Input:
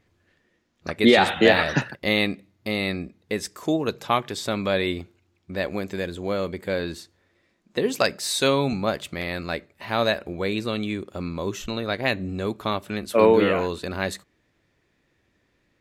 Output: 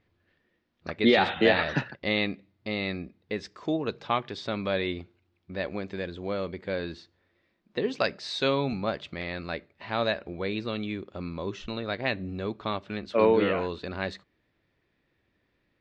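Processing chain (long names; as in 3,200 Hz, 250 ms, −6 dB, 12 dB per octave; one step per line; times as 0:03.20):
low-pass filter 4,800 Hz 24 dB per octave
level −5 dB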